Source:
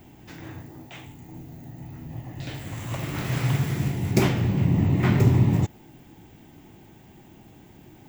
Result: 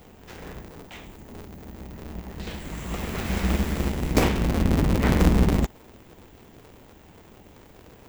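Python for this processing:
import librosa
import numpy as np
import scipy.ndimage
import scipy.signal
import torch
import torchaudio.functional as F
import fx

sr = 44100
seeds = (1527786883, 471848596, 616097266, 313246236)

y = fx.cycle_switch(x, sr, every=2, mode='inverted')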